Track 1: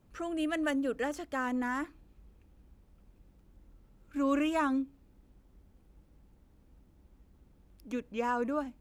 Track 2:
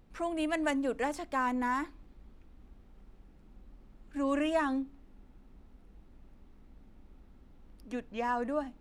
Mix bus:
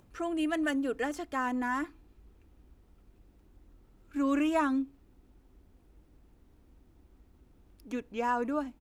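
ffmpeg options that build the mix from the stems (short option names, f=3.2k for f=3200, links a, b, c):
-filter_complex "[0:a]acompressor=mode=upward:threshold=-58dB:ratio=2.5,volume=0.5dB[a];[1:a]adelay=2.9,volume=-9dB[b];[a][b]amix=inputs=2:normalize=0"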